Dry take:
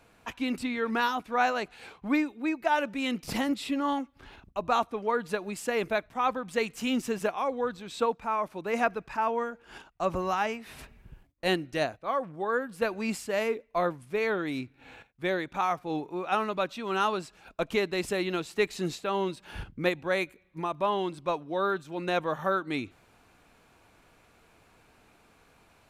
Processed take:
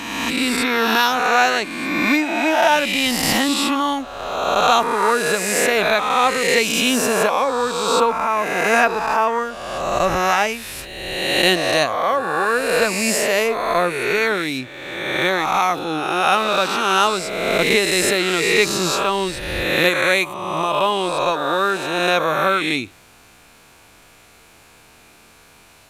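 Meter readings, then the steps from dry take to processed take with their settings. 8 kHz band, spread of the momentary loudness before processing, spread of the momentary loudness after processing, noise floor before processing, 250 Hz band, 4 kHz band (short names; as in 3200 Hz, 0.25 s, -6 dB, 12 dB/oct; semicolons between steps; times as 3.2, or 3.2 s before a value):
+21.5 dB, 7 LU, 7 LU, -62 dBFS, +8.5 dB, +18.0 dB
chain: spectral swells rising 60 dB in 1.62 s; high shelf 2600 Hz +10.5 dB; gain +6 dB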